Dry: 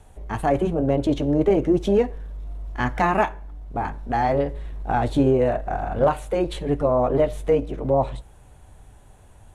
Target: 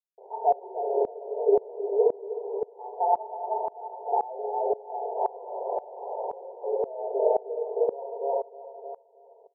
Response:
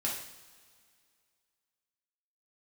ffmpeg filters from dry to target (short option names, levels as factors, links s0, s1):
-filter_complex "[0:a]aecho=1:1:4.4:0.85,acompressor=threshold=0.1:ratio=2,acrusher=bits=4:mix=0:aa=0.000001,flanger=delay=4:depth=2:regen=-90:speed=1.1:shape=sinusoidal,asettb=1/sr,asplit=3[s0][s1][s2];[s0]atrim=end=5.164[s3];[s1]atrim=start=5.16:end=6.33,asetpts=PTS-STARTPTS,afade=t=in:d=0.004:c=qsin,afade=t=out:st=1.166:d=0.004:c=qsin,aeval=exprs='(mod(14.1*val(0)+1,2)-1)/14.1':c=same[s4];[s2]atrim=start=6.326[s5];[s3][s4]acrossfade=d=0.004:c1=hsin:c2=qsin[s6];[s6][s5]acrossfade=d=0.004:c1=qsin:c2=hsin,asuperpass=centerf=610:order=20:qfactor=1.1,aecho=1:1:311|622|933|1244|1555:0.708|0.276|0.108|0.042|0.0164,asplit=2[s7][s8];[1:a]atrim=start_sample=2205,asetrate=28224,aresample=44100,lowshelf=f=430:g=8[s9];[s8][s9]afir=irnorm=-1:irlink=0,volume=0.422[s10];[s7][s10]amix=inputs=2:normalize=0,aeval=exprs='val(0)*pow(10,-22*if(lt(mod(-1.9*n/s,1),2*abs(-1.9)/1000),1-mod(-1.9*n/s,1)/(2*abs(-1.9)/1000),(mod(-1.9*n/s,1)-2*abs(-1.9)/1000)/(1-2*abs(-1.9)/1000))/20)':c=same,volume=1.12"